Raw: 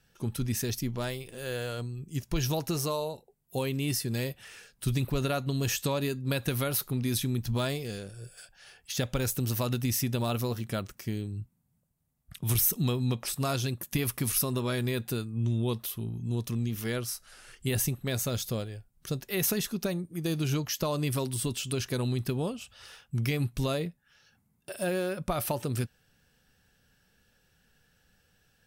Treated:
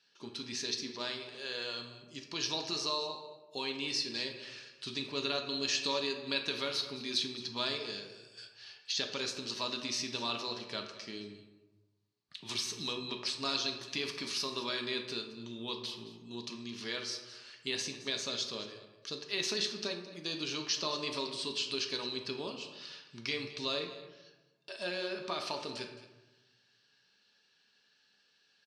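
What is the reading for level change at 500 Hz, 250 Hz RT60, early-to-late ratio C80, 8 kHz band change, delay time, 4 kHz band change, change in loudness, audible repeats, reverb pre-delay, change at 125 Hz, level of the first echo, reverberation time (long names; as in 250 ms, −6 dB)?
−6.5 dB, 1.3 s, 9.0 dB, −7.5 dB, 217 ms, +4.5 dB, −5.0 dB, 1, 4 ms, −22.5 dB, −16.5 dB, 1.1 s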